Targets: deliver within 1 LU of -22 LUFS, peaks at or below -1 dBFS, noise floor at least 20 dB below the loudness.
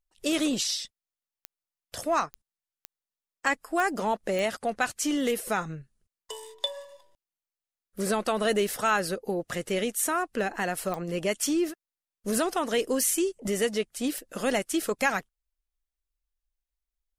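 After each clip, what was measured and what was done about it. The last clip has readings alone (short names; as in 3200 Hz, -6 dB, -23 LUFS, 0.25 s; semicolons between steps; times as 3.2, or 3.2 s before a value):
clicks 7; loudness -28.5 LUFS; peak -9.5 dBFS; loudness target -22.0 LUFS
-> de-click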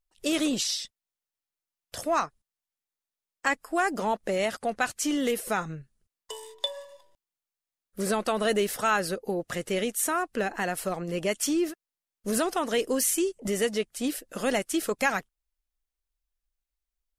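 clicks 0; loudness -28.5 LUFS; peak -9.5 dBFS; loudness target -22.0 LUFS
-> gain +6.5 dB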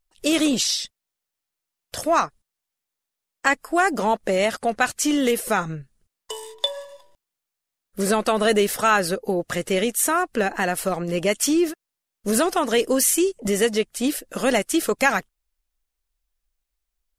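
loudness -22.0 LUFS; peak -3.0 dBFS; noise floor -85 dBFS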